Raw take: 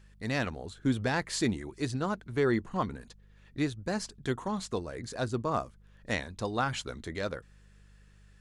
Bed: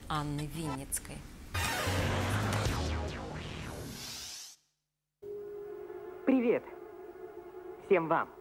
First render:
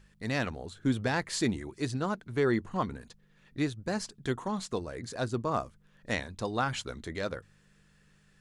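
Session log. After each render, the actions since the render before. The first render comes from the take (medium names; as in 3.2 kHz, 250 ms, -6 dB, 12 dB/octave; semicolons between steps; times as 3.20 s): de-hum 50 Hz, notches 2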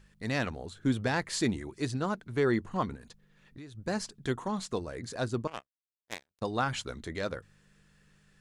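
2.95–3.75 s: compression, threshold -44 dBFS; 5.47–6.42 s: power-law waveshaper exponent 3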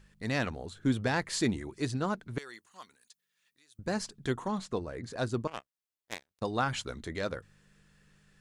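2.38–3.79 s: differentiator; 4.58–5.18 s: treble shelf 3.8 kHz -8 dB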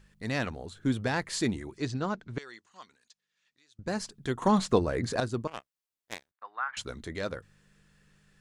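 1.77–3.87 s: low-pass 7.1 kHz 24 dB/octave; 4.42–5.20 s: gain +10 dB; 6.31–6.77 s: Butterworth band-pass 1.4 kHz, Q 1.5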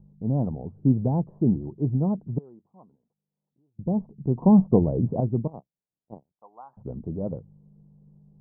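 steep low-pass 890 Hz 48 dB/octave; peaking EQ 160 Hz +13.5 dB 1.4 oct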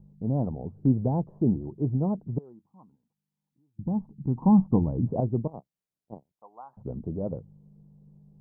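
2.52–5.07 s: time-frequency box 330–760 Hz -9 dB; dynamic bell 170 Hz, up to -3 dB, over -31 dBFS, Q 0.92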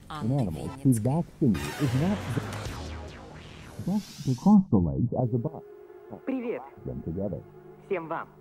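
add bed -3.5 dB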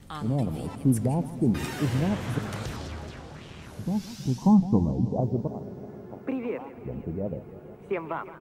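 delay 375 ms -23 dB; modulated delay 162 ms, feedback 78%, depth 193 cents, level -15.5 dB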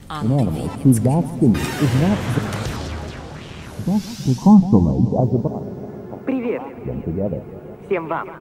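trim +9 dB; peak limiter -2 dBFS, peak gain reduction 1 dB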